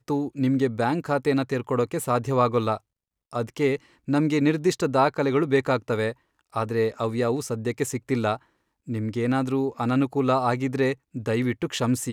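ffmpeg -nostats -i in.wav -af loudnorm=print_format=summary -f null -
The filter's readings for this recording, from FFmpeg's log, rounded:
Input Integrated:    -25.0 LUFS
Input True Peak:      -8.2 dBTP
Input LRA:             2.6 LU
Input Threshold:     -35.1 LUFS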